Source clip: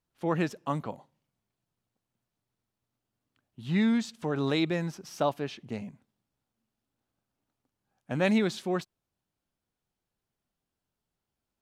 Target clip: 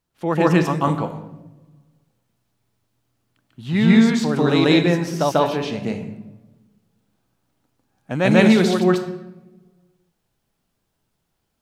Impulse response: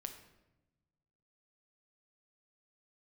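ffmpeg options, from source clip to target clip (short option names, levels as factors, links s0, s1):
-filter_complex "[0:a]asplit=2[s0][s1];[1:a]atrim=start_sample=2205,adelay=143[s2];[s1][s2]afir=irnorm=-1:irlink=0,volume=2.37[s3];[s0][s3]amix=inputs=2:normalize=0,volume=2.11"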